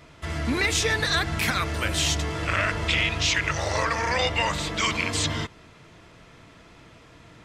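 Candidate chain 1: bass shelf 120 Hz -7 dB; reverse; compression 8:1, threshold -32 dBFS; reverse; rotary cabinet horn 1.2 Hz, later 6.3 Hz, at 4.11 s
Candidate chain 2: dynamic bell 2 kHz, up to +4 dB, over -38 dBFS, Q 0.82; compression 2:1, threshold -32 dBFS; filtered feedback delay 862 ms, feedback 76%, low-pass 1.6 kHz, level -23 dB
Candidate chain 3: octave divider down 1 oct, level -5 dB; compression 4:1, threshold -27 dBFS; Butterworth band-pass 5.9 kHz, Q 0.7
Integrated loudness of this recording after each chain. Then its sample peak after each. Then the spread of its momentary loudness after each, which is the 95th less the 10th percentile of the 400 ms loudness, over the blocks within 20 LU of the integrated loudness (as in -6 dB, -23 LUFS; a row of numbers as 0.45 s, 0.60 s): -37.0 LUFS, -29.0 LUFS, -34.5 LUFS; -22.5 dBFS, -13.5 dBFS, -18.5 dBFS; 19 LU, 9 LU, 7 LU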